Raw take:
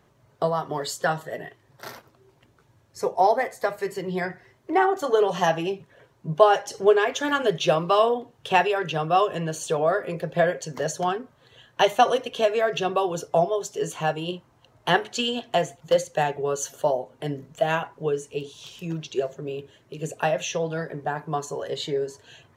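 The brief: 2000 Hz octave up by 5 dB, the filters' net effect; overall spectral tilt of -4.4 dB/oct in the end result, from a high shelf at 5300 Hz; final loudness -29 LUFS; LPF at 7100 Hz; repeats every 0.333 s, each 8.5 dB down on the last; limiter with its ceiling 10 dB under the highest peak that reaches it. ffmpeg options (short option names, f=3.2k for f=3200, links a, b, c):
-af "lowpass=7.1k,equalizer=f=2k:t=o:g=7,highshelf=f=5.3k:g=-3,alimiter=limit=-12.5dB:level=0:latency=1,aecho=1:1:333|666|999|1332:0.376|0.143|0.0543|0.0206,volume=-3.5dB"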